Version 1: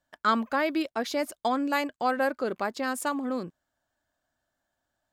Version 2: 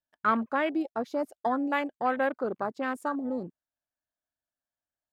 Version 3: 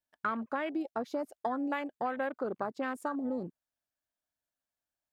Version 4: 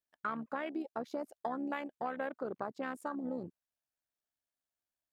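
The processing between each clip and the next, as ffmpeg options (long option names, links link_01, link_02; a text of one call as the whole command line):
ffmpeg -i in.wav -af "afwtdn=0.0251,volume=-1dB" out.wav
ffmpeg -i in.wav -af "acompressor=threshold=-30dB:ratio=6" out.wav
ffmpeg -i in.wav -af "tremolo=f=71:d=0.519,volume=-2dB" out.wav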